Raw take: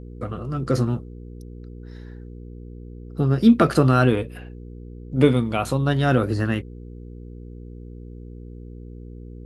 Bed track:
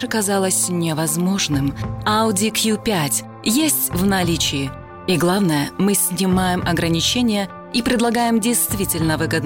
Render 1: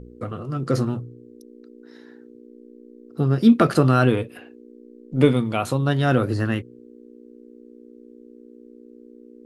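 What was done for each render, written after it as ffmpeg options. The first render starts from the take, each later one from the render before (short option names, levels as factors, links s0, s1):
-af "bandreject=f=60:t=h:w=4,bandreject=f=120:t=h:w=4,bandreject=f=180:t=h:w=4"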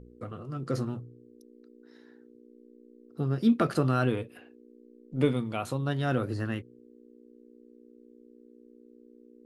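-af "volume=0.355"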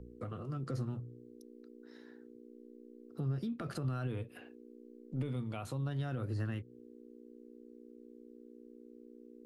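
-filter_complex "[0:a]alimiter=limit=0.0891:level=0:latency=1:release=39,acrossover=split=130[s0][s1];[s1]acompressor=threshold=0.00891:ratio=4[s2];[s0][s2]amix=inputs=2:normalize=0"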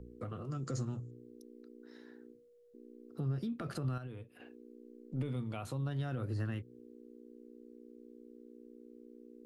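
-filter_complex "[0:a]asettb=1/sr,asplit=3[s0][s1][s2];[s0]atrim=end=0.514[s3];[s1]atrim=start=0.51:end=1.11,asetpts=PTS-STARTPTS,afade=t=in:d=0.004:c=qsin,afade=t=out:st=0.596:d=0.004:c=qsin,lowpass=f=7000:t=q:w=8.1[s4];[s2]atrim=start=1.106[s5];[s3][s4]acrossfade=d=0.004:c1=hsin:c2=qsin[s6];[s6][s5]acrossfade=d=0.004:c1=qsin:c2=hsin,asettb=1/sr,asplit=3[s7][s8][s9];[s7]atrim=end=2.314[s10];[s8]atrim=start=2.31:end=2.74,asetpts=PTS-STARTPTS,afade=t=in:d=0.004:c=qsin,afade=t=out:st=0.426:d=0.004:c=qsin,bandreject=f=60:t=h:w=6,bandreject=f=120:t=h:w=6,bandreject=f=180:t=h:w=6,bandreject=f=240:t=h:w=6,bandreject=f=300:t=h:w=6,bandreject=f=360:t=h:w=6,bandreject=f=420:t=h:w=6[s11];[s9]atrim=start=2.736[s12];[s10][s11]acrossfade=d=0.004:c1=hsin:c2=qsin[s13];[s13][s12]acrossfade=d=0.004:c1=qsin:c2=hsin,asplit=3[s14][s15][s16];[s14]atrim=end=3.982[s17];[s15]atrim=start=3.978:end=4.402,asetpts=PTS-STARTPTS,volume=0.398[s18];[s16]atrim=start=4.398[s19];[s17][s18]acrossfade=d=0.004:c1=hsin:c2=hsin[s20];[s20][s19]acrossfade=d=0.004:c1=hsin:c2=hsin"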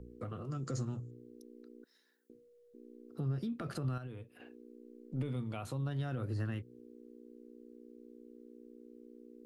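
-filter_complex "[0:a]asettb=1/sr,asplit=3[s0][s1][s2];[s0]atrim=end=1.844[s3];[s1]atrim=start=1.84:end=2.3,asetpts=PTS-STARTPTS,afade=t=in:d=0.004:c=qsin,afade=t=out:st=0.456:d=0.004:c=qsin,aderivative[s4];[s2]atrim=start=2.296[s5];[s3][s4]acrossfade=d=0.004:c1=hsin:c2=qsin[s6];[s6][s5]acrossfade=d=0.004:c1=qsin:c2=hsin"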